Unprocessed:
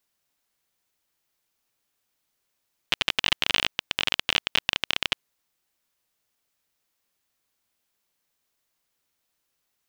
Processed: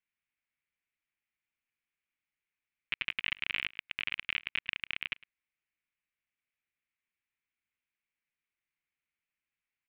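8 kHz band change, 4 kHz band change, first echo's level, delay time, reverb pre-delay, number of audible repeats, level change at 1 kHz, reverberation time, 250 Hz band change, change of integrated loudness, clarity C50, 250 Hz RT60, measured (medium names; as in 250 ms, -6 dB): under -35 dB, -13.5 dB, -22.5 dB, 106 ms, no reverb, 1, -16.0 dB, no reverb, -15.0 dB, -9.5 dB, no reverb, no reverb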